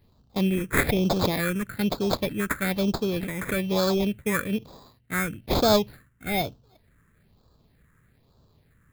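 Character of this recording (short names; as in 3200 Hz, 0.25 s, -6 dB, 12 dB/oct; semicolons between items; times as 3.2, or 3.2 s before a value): aliases and images of a low sample rate 2900 Hz, jitter 0%; phasing stages 4, 1.1 Hz, lowest notch 730–2000 Hz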